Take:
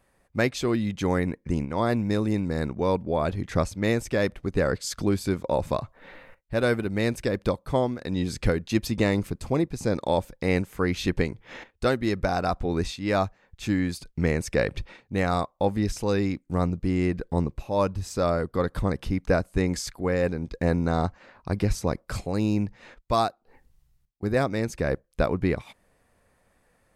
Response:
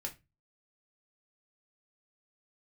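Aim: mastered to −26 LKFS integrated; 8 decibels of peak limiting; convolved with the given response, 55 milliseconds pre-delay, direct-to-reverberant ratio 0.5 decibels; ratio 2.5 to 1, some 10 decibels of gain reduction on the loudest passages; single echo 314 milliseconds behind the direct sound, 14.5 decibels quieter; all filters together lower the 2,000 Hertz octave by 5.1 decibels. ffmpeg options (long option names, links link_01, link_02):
-filter_complex "[0:a]equalizer=frequency=2000:width_type=o:gain=-6.5,acompressor=threshold=-34dB:ratio=2.5,alimiter=level_in=2dB:limit=-24dB:level=0:latency=1,volume=-2dB,aecho=1:1:314:0.188,asplit=2[link_01][link_02];[1:a]atrim=start_sample=2205,adelay=55[link_03];[link_02][link_03]afir=irnorm=-1:irlink=0,volume=0.5dB[link_04];[link_01][link_04]amix=inputs=2:normalize=0,volume=9dB"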